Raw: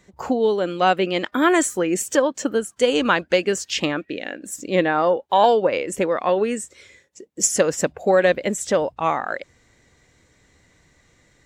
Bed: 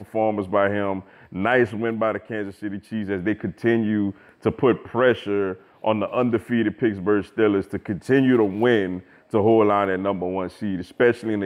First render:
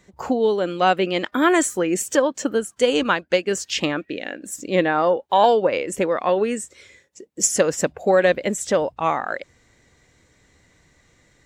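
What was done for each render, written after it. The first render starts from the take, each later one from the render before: 3.03–3.51 s: upward expansion, over -31 dBFS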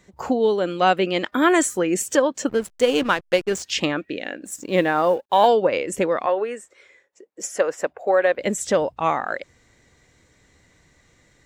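2.49–3.63 s: hysteresis with a dead band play -27 dBFS; 4.45–5.48 s: companding laws mixed up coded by A; 6.26–8.39 s: three-band isolator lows -20 dB, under 380 Hz, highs -12 dB, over 2.3 kHz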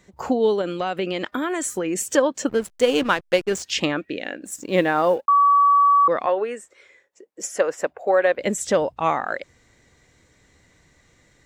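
0.61–2.13 s: compression 12:1, threshold -20 dBFS; 5.28–6.08 s: bleep 1.14 kHz -12 dBFS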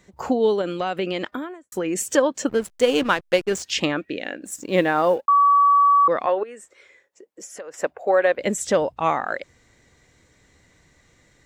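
1.17–1.72 s: studio fade out; 6.43–7.74 s: compression 3:1, threshold -38 dBFS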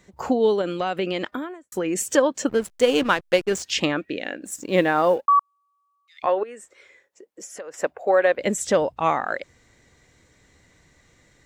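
5.39–6.23 s: Chebyshev high-pass 2.2 kHz, order 6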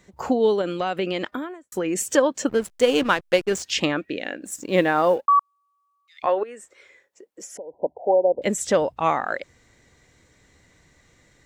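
7.57–8.42 s: brick-wall FIR low-pass 1 kHz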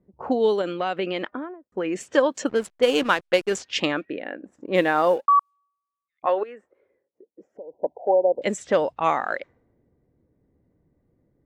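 bass shelf 140 Hz -10.5 dB; level-controlled noise filter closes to 340 Hz, open at -18.5 dBFS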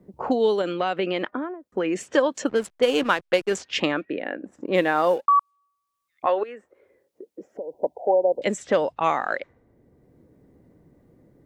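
three bands compressed up and down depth 40%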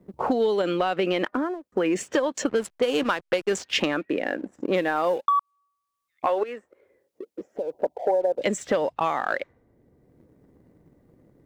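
compression 12:1, threshold -22 dBFS, peak gain reduction 9 dB; waveshaping leveller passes 1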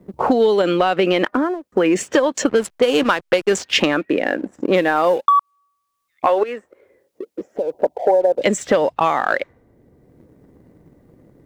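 trim +7.5 dB

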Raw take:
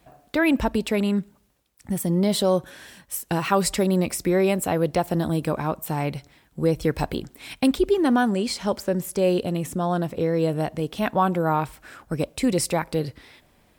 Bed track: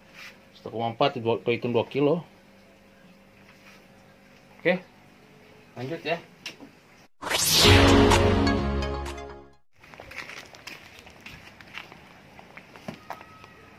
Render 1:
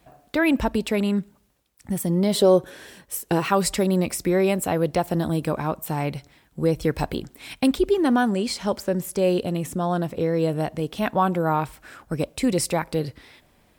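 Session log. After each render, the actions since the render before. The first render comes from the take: 2.35–3.47 s: peaking EQ 420 Hz +9 dB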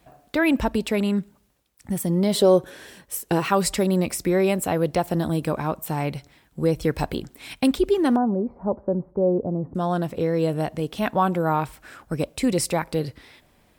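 8.16–9.75 s: inverse Chebyshev low-pass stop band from 3.2 kHz, stop band 60 dB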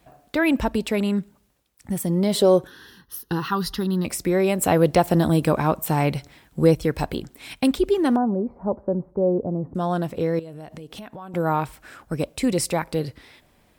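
2.67–4.05 s: static phaser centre 2.3 kHz, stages 6; 4.61–6.75 s: gain +5 dB; 10.39–11.34 s: compression 12:1, threshold -34 dBFS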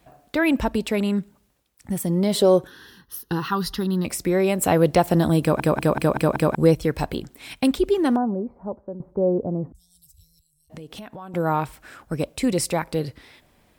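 5.41 s: stutter in place 0.19 s, 6 plays; 8.06–9.00 s: fade out, to -12.5 dB; 9.72–10.70 s: inverse Chebyshev band-stop 210–2000 Hz, stop band 60 dB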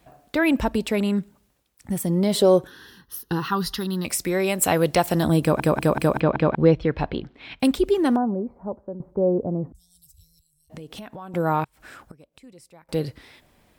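3.69–5.23 s: tilt shelf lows -4 dB, about 1.1 kHz; 6.20–7.60 s: low-pass 3.8 kHz 24 dB/octave; 11.64–12.89 s: inverted gate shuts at -29 dBFS, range -26 dB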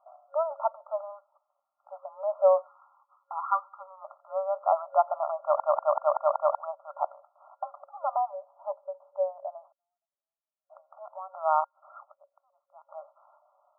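FFT band-pass 550–1400 Hz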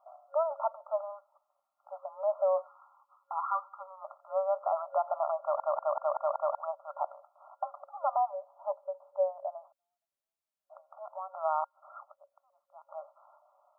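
peak limiter -19.5 dBFS, peak gain reduction 9.5 dB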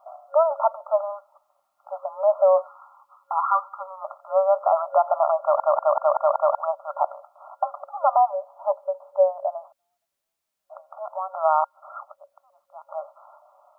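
trim +10.5 dB

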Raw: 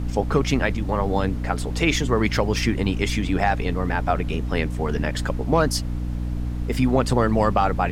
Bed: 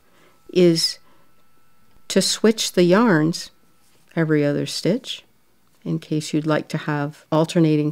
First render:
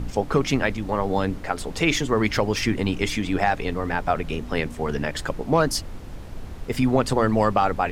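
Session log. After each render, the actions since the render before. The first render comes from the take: de-hum 60 Hz, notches 5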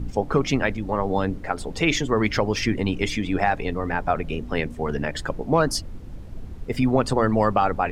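noise reduction 9 dB, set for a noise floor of -37 dBFS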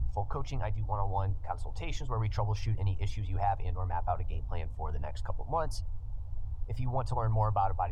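FFT filter 110 Hz 0 dB, 180 Hz -27 dB, 360 Hz -24 dB, 880 Hz -5 dB, 1.8 kHz -25 dB, 3.1 kHz -19 dB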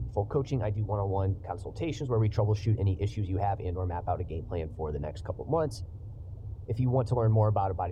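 high-pass 150 Hz 12 dB/octave; resonant low shelf 600 Hz +11.5 dB, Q 1.5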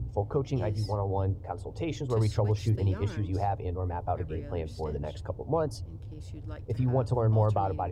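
add bed -26.5 dB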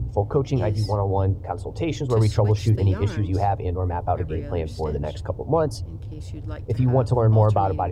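trim +7.5 dB

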